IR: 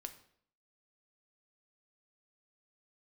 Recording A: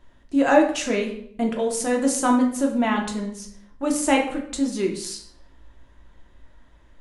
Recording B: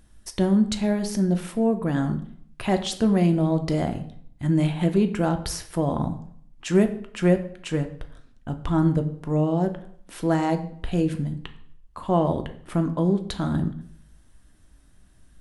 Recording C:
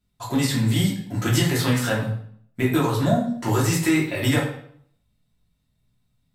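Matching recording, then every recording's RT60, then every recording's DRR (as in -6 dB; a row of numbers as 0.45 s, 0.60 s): B; 0.60 s, 0.60 s, 0.60 s; 0.5 dB, 7.0 dB, -5.5 dB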